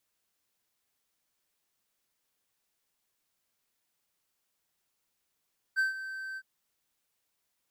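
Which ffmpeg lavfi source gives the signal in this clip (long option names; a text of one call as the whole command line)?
ffmpeg -f lavfi -i "aevalsrc='0.0891*(1-4*abs(mod(1550*t+0.25,1)-0.5))':duration=0.661:sample_rate=44100,afade=type=in:duration=0.031,afade=type=out:start_time=0.031:duration=0.14:silence=0.211,afade=type=out:start_time=0.61:duration=0.051" out.wav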